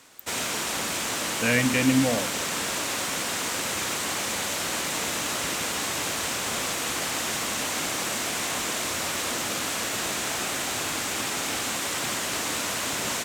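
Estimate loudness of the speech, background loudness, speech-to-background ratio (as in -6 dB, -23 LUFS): -24.5 LUFS, -27.0 LUFS, 2.5 dB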